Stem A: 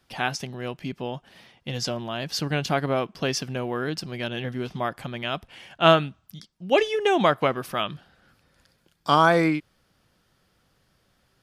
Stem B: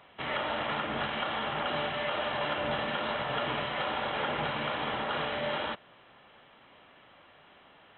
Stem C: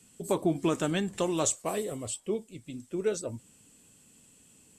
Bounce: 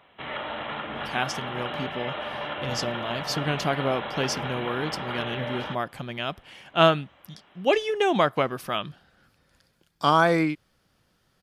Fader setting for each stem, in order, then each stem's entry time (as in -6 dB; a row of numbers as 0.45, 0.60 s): -1.5 dB, -1.0 dB, off; 0.95 s, 0.00 s, off